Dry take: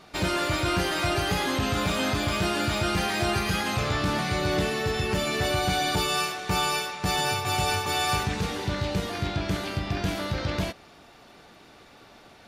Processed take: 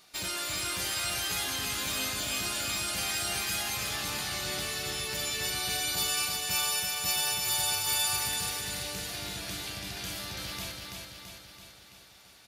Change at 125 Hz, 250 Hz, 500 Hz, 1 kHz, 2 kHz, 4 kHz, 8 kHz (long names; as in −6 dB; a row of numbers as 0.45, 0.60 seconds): −14.5, −15.0, −13.5, −10.5, −5.5, −1.0, +5.0 decibels